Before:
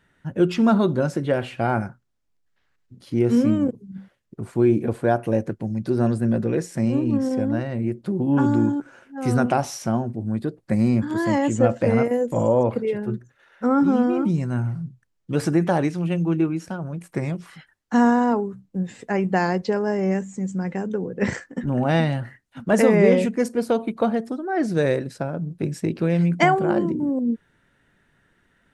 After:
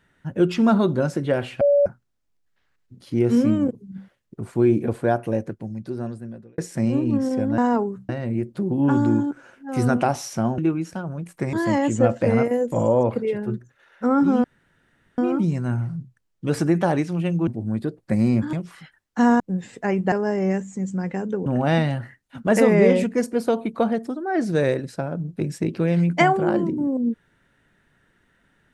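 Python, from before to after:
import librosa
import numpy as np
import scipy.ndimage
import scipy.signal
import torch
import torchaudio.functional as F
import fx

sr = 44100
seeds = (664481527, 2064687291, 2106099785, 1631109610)

y = fx.edit(x, sr, fx.bleep(start_s=1.61, length_s=0.25, hz=572.0, db=-13.0),
    fx.fade_out_span(start_s=4.97, length_s=1.61),
    fx.swap(start_s=10.07, length_s=1.06, other_s=16.33, other_length_s=0.95),
    fx.insert_room_tone(at_s=14.04, length_s=0.74),
    fx.move(start_s=18.15, length_s=0.51, to_s=7.58),
    fx.cut(start_s=19.38, length_s=0.35),
    fx.cut(start_s=21.07, length_s=0.61), tone=tone)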